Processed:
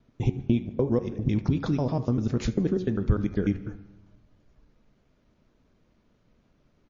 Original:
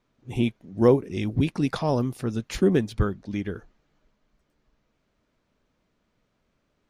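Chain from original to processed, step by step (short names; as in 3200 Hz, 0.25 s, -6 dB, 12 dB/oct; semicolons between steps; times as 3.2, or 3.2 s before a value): slices in reverse order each 99 ms, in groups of 2; feedback echo 75 ms, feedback 26%, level -19.5 dB; compressor 2.5:1, threshold -27 dBFS, peak gain reduction 10 dB; on a send at -21.5 dB: reverb RT60 1.0 s, pre-delay 0.122 s; on the sum: dynamic EQ 2800 Hz, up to -4 dB, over -58 dBFS, Q 3.5; vocal rider within 3 dB 0.5 s; low shelf 500 Hz +8.5 dB; de-hum 91.61 Hz, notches 27; gain -1.5 dB; MP3 32 kbps 16000 Hz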